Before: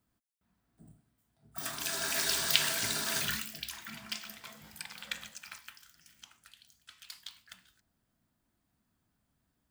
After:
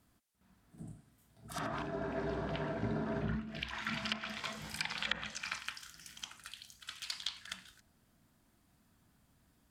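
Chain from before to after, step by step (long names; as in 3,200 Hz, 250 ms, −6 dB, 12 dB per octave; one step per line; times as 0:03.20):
backwards echo 64 ms −10.5 dB
treble cut that deepens with the level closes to 560 Hz, closed at −33 dBFS
level +8 dB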